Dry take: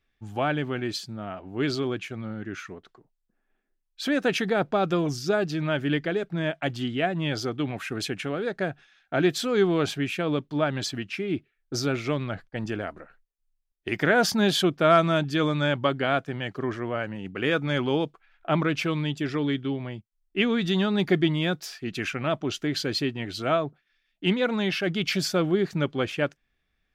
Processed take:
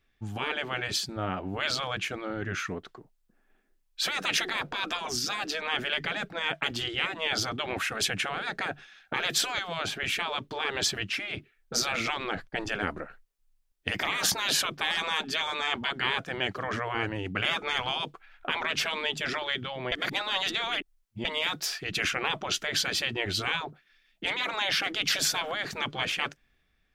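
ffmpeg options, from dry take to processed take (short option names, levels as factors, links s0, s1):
-filter_complex "[0:a]asettb=1/sr,asplit=3[s0][s1][s2];[s0]atrim=end=9.584[s3];[s1]atrim=start=9.58:end=10.04,asetpts=PTS-STARTPTS,afade=t=in:d=0.004:c=qsin,afade=t=out:st=0.456:d=0.004:c=qsin,acrossover=split=340|2600[s4][s5][s6];[s4]acompressor=threshold=0.0224:ratio=4[s7];[s5]acompressor=threshold=0.0251:ratio=4[s8];[s6]acompressor=threshold=0.00708:ratio=4[s9];[s7][s8][s9]amix=inputs=3:normalize=0[s10];[s2]atrim=start=10.036[s11];[s3][s10]acrossfade=d=0.004:c1=hsin:c2=qsin[s12];[s12][s11]acrossfade=d=0.004:c1=qsin:c2=hsin,asplit=3[s13][s14][s15];[s13]atrim=end=19.922[s16];[s14]atrim=start=19.918:end=21.252,asetpts=PTS-STARTPTS,areverse[s17];[s15]atrim=start=21.248[s18];[s16][s17]acrossfade=d=0.004:c1=hsin:c2=hsin[s19];[s19][s18]acrossfade=d=0.004:c1=hsin:c2=hsin,dynaudnorm=f=130:g=9:m=1.58,afftfilt=real='re*lt(hypot(re,im),0.158)':imag='im*lt(hypot(re,im),0.158)':win_size=1024:overlap=0.75,volume=1.41"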